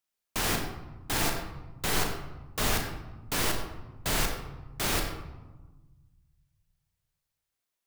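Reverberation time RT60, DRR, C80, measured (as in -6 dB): 1.2 s, 2.5 dB, 6.5 dB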